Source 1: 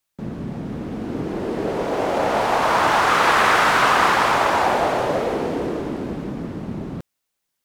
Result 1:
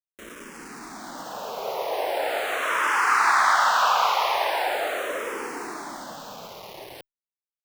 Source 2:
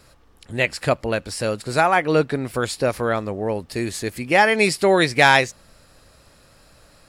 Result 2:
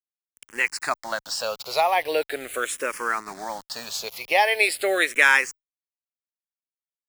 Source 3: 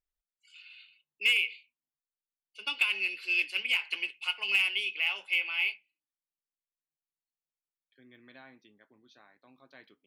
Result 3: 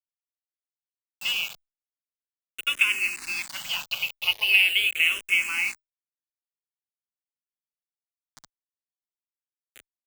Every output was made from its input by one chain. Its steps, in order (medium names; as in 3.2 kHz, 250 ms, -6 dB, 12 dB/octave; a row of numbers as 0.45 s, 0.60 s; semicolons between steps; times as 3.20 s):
high-pass 690 Hz 12 dB/octave; in parallel at -0.5 dB: compression 5:1, threshold -28 dBFS; on the sum: bit crusher 6-bit; barber-pole phaser -0.41 Hz; normalise loudness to -23 LUFS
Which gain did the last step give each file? -2.5 dB, -1.0 dB, +4.5 dB